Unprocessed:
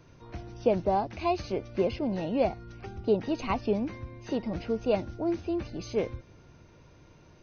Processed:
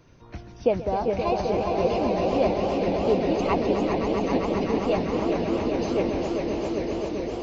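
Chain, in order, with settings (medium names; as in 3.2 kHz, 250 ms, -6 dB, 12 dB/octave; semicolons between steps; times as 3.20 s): echo with a slow build-up 131 ms, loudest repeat 5, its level -7.5 dB; harmonic-percussive split percussive +6 dB; modulated delay 413 ms, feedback 74%, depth 165 cents, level -7 dB; trim -2.5 dB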